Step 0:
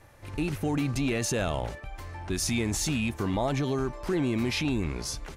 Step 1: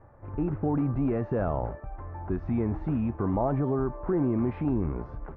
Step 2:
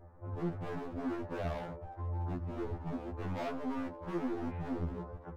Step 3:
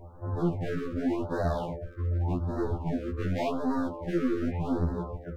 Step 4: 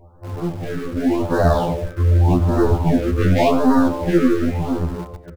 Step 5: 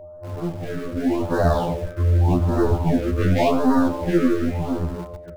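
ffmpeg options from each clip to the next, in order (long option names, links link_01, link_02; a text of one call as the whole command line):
ffmpeg -i in.wav -af "lowpass=frequency=1300:width=0.5412,lowpass=frequency=1300:width=1.3066,bandreject=frequency=314.6:width_type=h:width=4,bandreject=frequency=629.2:width_type=h:width=4,bandreject=frequency=943.8:width_type=h:width=4,bandreject=frequency=1258.4:width_type=h:width=4,bandreject=frequency=1573:width_type=h:width=4,bandreject=frequency=1887.6:width_type=h:width=4,bandreject=frequency=2202.2:width_type=h:width=4,bandreject=frequency=2516.8:width_type=h:width=4,bandreject=frequency=2831.4:width_type=h:width=4,bandreject=frequency=3146:width_type=h:width=4,bandreject=frequency=3460.6:width_type=h:width=4,bandreject=frequency=3775.2:width_type=h:width=4,bandreject=frequency=4089.8:width_type=h:width=4,bandreject=frequency=4404.4:width_type=h:width=4,bandreject=frequency=4719:width_type=h:width=4,bandreject=frequency=5033.6:width_type=h:width=4,bandreject=frequency=5348.2:width_type=h:width=4,bandreject=frequency=5662.8:width_type=h:width=4,bandreject=frequency=5977.4:width_type=h:width=4,bandreject=frequency=6292:width_type=h:width=4,bandreject=frequency=6606.6:width_type=h:width=4,bandreject=frequency=6921.2:width_type=h:width=4,bandreject=frequency=7235.8:width_type=h:width=4,bandreject=frequency=7550.4:width_type=h:width=4,bandreject=frequency=7865:width_type=h:width=4,bandreject=frequency=8179.6:width_type=h:width=4,bandreject=frequency=8494.2:width_type=h:width=4,bandreject=frequency=8808.8:width_type=h:width=4,bandreject=frequency=9123.4:width_type=h:width=4,bandreject=frequency=9438:width_type=h:width=4,bandreject=frequency=9752.6:width_type=h:width=4,bandreject=frequency=10067.2:width_type=h:width=4,bandreject=frequency=10381.8:width_type=h:width=4,volume=1.5dB" out.wav
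ffmpeg -i in.wav -af "highshelf=frequency=2300:gain=-10.5,asoftclip=type=hard:threshold=-32.5dB,afftfilt=real='re*2*eq(mod(b,4),0)':imag='im*2*eq(mod(b,4),0)':win_size=2048:overlap=0.75" out.wav
ffmpeg -i in.wav -af "afftfilt=real='re*(1-between(b*sr/1024,760*pow(2700/760,0.5+0.5*sin(2*PI*0.87*pts/sr))/1.41,760*pow(2700/760,0.5+0.5*sin(2*PI*0.87*pts/sr))*1.41))':imag='im*(1-between(b*sr/1024,760*pow(2700/760,0.5+0.5*sin(2*PI*0.87*pts/sr))/1.41,760*pow(2700/760,0.5+0.5*sin(2*PI*0.87*pts/sr))*1.41))':win_size=1024:overlap=0.75,volume=8.5dB" out.wav
ffmpeg -i in.wav -filter_complex "[0:a]dynaudnorm=framelen=200:gausssize=11:maxgain=12dB,asplit=2[link_01][link_02];[link_02]acrusher=bits=4:mix=0:aa=0.000001,volume=-11.5dB[link_03];[link_01][link_03]amix=inputs=2:normalize=0,aecho=1:1:94|188|282:0.158|0.0475|0.0143" out.wav
ffmpeg -i in.wav -af "aeval=exprs='val(0)+0.0178*sin(2*PI*610*n/s)':channel_layout=same,volume=-3dB" out.wav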